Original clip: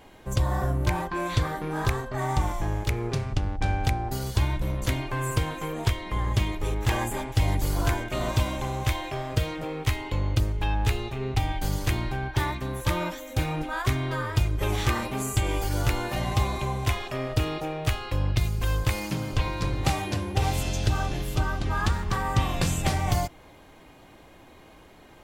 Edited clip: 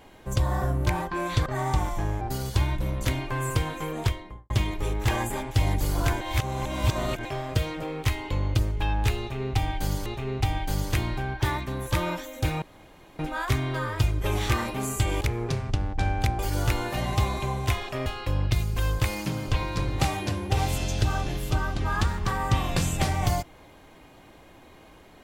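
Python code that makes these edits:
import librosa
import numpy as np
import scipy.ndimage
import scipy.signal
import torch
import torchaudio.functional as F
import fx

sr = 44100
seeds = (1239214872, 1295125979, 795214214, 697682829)

y = fx.studio_fade_out(x, sr, start_s=5.8, length_s=0.51)
y = fx.edit(y, sr, fx.cut(start_s=1.46, length_s=0.63),
    fx.move(start_s=2.84, length_s=1.18, to_s=15.58),
    fx.reverse_span(start_s=8.02, length_s=1.04),
    fx.repeat(start_s=11.0, length_s=0.87, count=2),
    fx.insert_room_tone(at_s=13.56, length_s=0.57),
    fx.cut(start_s=17.25, length_s=0.66), tone=tone)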